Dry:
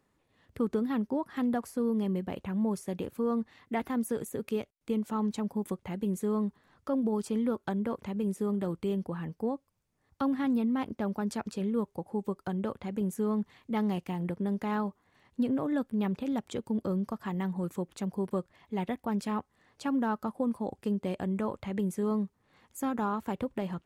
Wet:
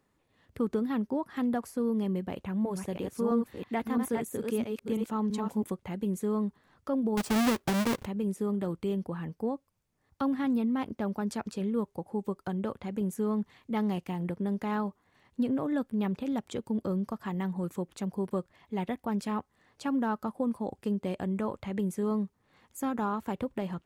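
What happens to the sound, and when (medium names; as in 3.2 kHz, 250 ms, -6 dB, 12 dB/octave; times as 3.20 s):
2.32–5.64 s: chunks repeated in reverse 331 ms, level -4 dB
7.17–8.06 s: square wave that keeps the level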